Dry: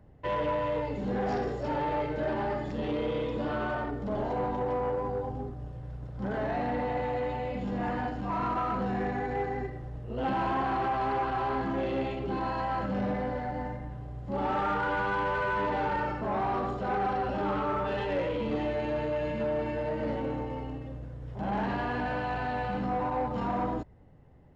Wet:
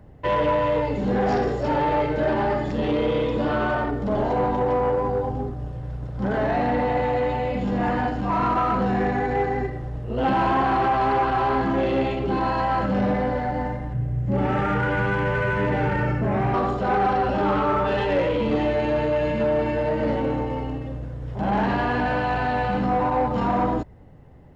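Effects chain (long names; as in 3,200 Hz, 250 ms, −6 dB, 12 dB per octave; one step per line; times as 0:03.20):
0:13.93–0:16.54: graphic EQ with 10 bands 125 Hz +9 dB, 1,000 Hz −9 dB, 2,000 Hz +4 dB, 4,000 Hz −8 dB
level +8.5 dB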